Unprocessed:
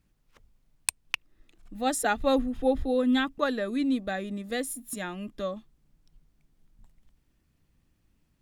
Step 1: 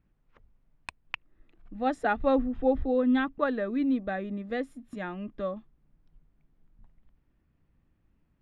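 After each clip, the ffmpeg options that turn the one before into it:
-af "lowpass=2k"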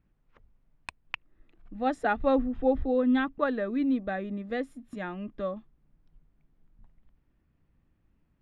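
-af anull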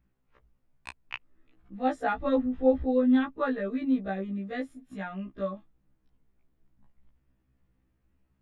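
-af "afftfilt=real='re*1.73*eq(mod(b,3),0)':imag='im*1.73*eq(mod(b,3),0)':win_size=2048:overlap=0.75,volume=1dB"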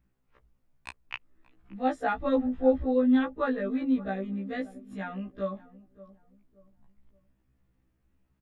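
-filter_complex "[0:a]asplit=2[a][b];[b]adelay=575,lowpass=f=810:p=1,volume=-17dB,asplit=2[c][d];[d]adelay=575,lowpass=f=810:p=1,volume=0.38,asplit=2[e][f];[f]adelay=575,lowpass=f=810:p=1,volume=0.38[g];[a][c][e][g]amix=inputs=4:normalize=0"

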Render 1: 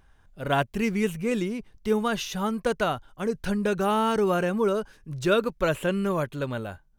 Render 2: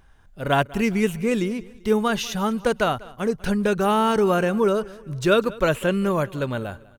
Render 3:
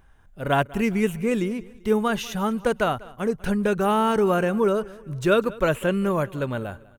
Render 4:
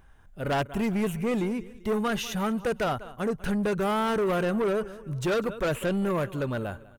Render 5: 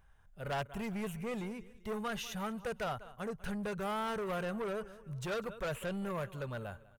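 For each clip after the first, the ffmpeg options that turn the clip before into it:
-af "aecho=1:1:195|390|585:0.0891|0.0374|0.0157,volume=4dB"
-af "equalizer=f=4.7k:t=o:w=1:g=-6,volume=-1dB"
-af "asoftclip=type=tanh:threshold=-22dB"
-af "equalizer=f=300:t=o:w=0.62:g=-12,volume=-8.5dB"

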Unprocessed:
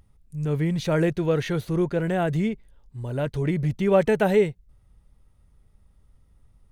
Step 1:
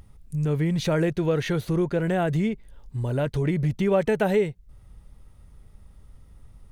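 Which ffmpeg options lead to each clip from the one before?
-af "acompressor=threshold=-36dB:ratio=2,volume=8.5dB"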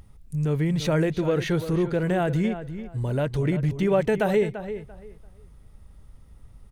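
-filter_complex "[0:a]asplit=2[a][b];[b]adelay=341,lowpass=f=3k:p=1,volume=-11dB,asplit=2[c][d];[d]adelay=341,lowpass=f=3k:p=1,volume=0.22,asplit=2[e][f];[f]adelay=341,lowpass=f=3k:p=1,volume=0.22[g];[a][c][e][g]amix=inputs=4:normalize=0"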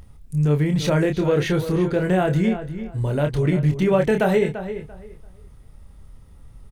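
-filter_complex "[0:a]asplit=2[a][b];[b]adelay=27,volume=-6dB[c];[a][c]amix=inputs=2:normalize=0,volume=3dB"

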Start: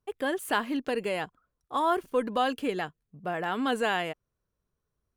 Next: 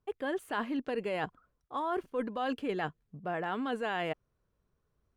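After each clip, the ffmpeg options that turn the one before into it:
-af "lowpass=f=2.6k:p=1,areverse,acompressor=threshold=-36dB:ratio=6,areverse,volume=5dB"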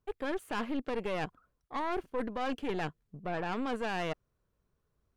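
-af "aeval=exprs='(tanh(39.8*val(0)+0.75)-tanh(0.75))/39.8':c=same,volume=4dB"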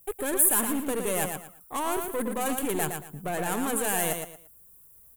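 -af "asoftclip=type=tanh:threshold=-30dB,aexciter=amount=13.3:drive=9.9:freq=7.9k,aecho=1:1:114|228|342:0.501|0.13|0.0339,volume=7dB"

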